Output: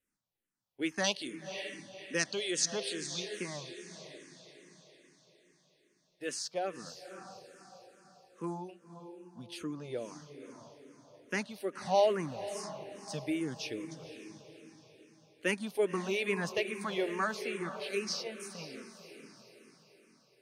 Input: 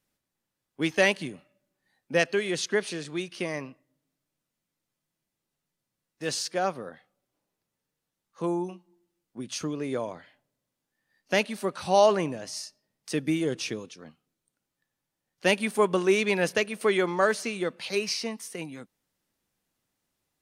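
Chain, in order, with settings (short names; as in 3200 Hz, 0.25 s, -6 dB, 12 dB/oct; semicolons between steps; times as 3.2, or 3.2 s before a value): 1.04–3.2 band shelf 5300 Hz +10.5 dB; diffused feedback echo 0.544 s, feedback 44%, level -10 dB; endless phaser -2.4 Hz; gain -5.5 dB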